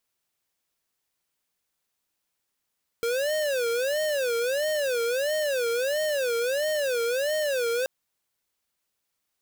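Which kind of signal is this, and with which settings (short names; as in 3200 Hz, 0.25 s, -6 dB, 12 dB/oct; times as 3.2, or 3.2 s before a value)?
siren wail 463–619 Hz 1.5/s square -26 dBFS 4.83 s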